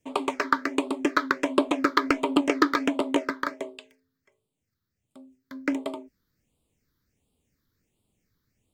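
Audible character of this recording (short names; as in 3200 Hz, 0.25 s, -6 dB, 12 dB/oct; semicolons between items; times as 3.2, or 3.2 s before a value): phasing stages 6, 1.4 Hz, lowest notch 690–1700 Hz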